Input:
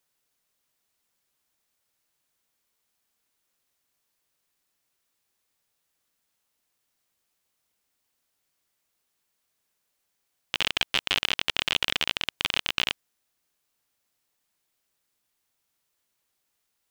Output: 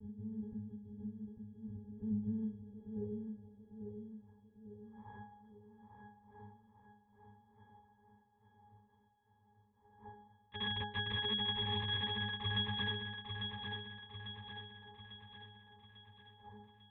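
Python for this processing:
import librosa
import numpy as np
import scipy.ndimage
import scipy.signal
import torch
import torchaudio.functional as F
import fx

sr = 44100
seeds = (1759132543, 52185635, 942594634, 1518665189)

p1 = fx.dmg_wind(x, sr, seeds[0], corner_hz=180.0, level_db=-40.0)
p2 = fx.filter_sweep_highpass(p1, sr, from_hz=160.0, to_hz=990.0, start_s=2.04, end_s=4.16, q=2.7)
p3 = fx.lpc_monotone(p2, sr, seeds[1], pitch_hz=220.0, order=8)
p4 = fx.octave_resonator(p3, sr, note='G#', decay_s=0.42)
p5 = p4 + fx.echo_feedback(p4, sr, ms=847, feedback_pct=50, wet_db=-6, dry=0)
y = F.gain(torch.from_numpy(p5), 10.5).numpy()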